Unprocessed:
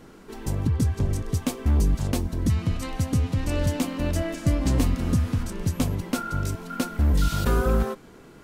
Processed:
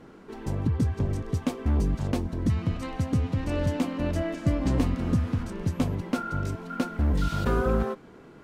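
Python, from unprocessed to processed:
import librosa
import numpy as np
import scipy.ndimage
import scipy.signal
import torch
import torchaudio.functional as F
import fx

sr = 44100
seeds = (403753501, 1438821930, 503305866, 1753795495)

y = fx.lowpass(x, sr, hz=2200.0, slope=6)
y = fx.low_shelf(y, sr, hz=62.0, db=-9.0)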